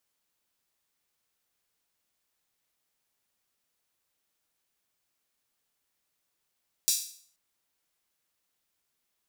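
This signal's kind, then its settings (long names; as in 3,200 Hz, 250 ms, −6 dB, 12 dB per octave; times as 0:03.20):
open synth hi-hat length 0.48 s, high-pass 5,100 Hz, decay 0.52 s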